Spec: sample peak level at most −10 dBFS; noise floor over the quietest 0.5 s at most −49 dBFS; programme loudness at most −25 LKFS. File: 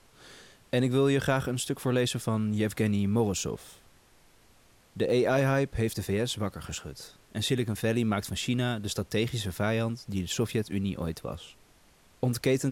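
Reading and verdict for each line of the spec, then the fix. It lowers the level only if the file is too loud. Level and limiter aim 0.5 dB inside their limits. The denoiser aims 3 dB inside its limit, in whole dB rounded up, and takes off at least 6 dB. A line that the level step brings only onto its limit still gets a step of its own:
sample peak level −14.0 dBFS: in spec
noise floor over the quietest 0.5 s −60 dBFS: in spec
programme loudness −29.0 LKFS: in spec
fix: no processing needed

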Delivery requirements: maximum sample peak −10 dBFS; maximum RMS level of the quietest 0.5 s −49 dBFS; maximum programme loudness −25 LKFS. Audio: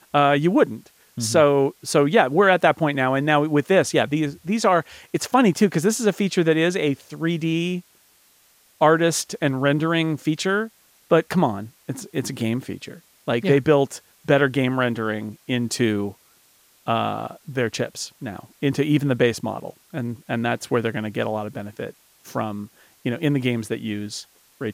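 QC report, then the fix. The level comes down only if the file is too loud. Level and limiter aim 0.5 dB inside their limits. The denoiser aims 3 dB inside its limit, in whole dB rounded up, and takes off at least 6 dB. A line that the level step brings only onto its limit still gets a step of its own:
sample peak −4.0 dBFS: out of spec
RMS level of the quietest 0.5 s −58 dBFS: in spec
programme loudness −21.5 LKFS: out of spec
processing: level −4 dB
brickwall limiter −10.5 dBFS

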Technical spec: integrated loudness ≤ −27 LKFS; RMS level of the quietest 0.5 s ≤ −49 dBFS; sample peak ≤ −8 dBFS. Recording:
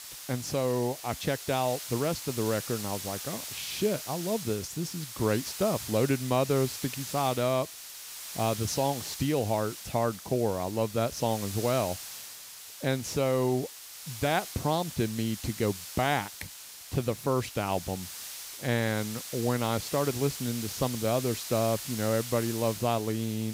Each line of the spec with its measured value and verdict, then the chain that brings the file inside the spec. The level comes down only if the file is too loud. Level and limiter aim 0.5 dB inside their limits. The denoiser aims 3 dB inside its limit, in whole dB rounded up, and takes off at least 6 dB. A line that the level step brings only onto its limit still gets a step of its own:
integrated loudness −30.0 LKFS: in spec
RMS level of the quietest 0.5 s −46 dBFS: out of spec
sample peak −13.0 dBFS: in spec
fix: broadband denoise 6 dB, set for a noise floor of −46 dBFS

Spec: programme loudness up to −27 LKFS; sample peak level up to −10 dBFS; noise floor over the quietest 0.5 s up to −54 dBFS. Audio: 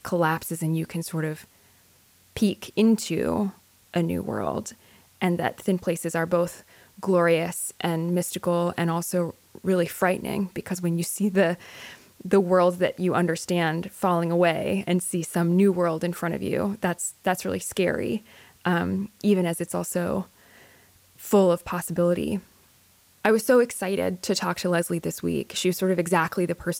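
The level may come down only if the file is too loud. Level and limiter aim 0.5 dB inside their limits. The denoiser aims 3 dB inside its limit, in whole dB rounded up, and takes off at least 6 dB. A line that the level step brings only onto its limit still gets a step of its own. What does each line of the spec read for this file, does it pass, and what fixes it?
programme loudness −25.0 LKFS: out of spec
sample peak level −6.0 dBFS: out of spec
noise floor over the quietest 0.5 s −59 dBFS: in spec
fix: level −2.5 dB
brickwall limiter −10.5 dBFS

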